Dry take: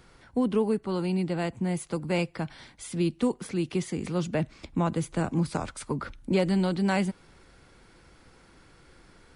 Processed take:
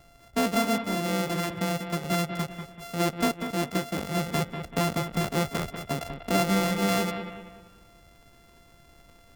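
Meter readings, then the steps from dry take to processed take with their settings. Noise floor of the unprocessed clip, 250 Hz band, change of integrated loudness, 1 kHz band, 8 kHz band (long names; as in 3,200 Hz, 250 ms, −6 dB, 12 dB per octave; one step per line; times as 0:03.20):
−57 dBFS, −1.0 dB, +1.0 dB, +5.5 dB, +6.5 dB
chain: samples sorted by size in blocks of 64 samples
on a send: bucket-brigade delay 192 ms, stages 4,096, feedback 40%, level −8 dB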